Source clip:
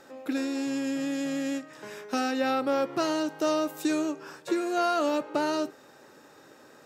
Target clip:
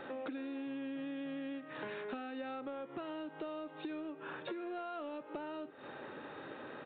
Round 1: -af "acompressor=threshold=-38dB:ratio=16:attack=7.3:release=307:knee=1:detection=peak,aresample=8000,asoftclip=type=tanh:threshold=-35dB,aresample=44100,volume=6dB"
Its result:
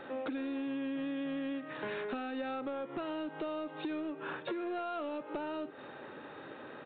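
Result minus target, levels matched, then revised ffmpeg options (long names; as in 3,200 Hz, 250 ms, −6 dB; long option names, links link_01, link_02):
downward compressor: peak gain reduction −5.5 dB
-af "acompressor=threshold=-44dB:ratio=16:attack=7.3:release=307:knee=1:detection=peak,aresample=8000,asoftclip=type=tanh:threshold=-35dB,aresample=44100,volume=6dB"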